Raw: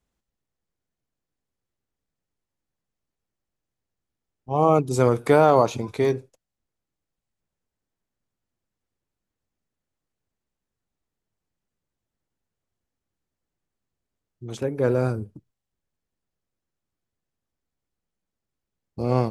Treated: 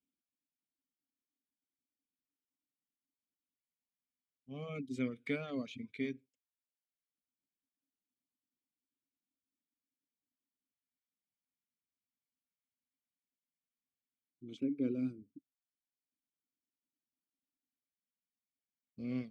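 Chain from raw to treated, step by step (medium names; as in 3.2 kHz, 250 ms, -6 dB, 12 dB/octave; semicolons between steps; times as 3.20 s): LFO notch square 0.14 Hz 320–1800 Hz; vowel filter i; reverb removal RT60 0.77 s; trim +1 dB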